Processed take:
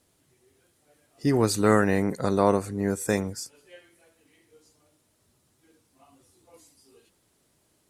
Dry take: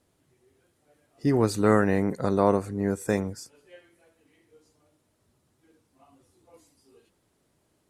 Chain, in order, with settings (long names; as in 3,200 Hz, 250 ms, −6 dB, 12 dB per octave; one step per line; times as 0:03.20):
high-shelf EQ 2,600 Hz +7.5 dB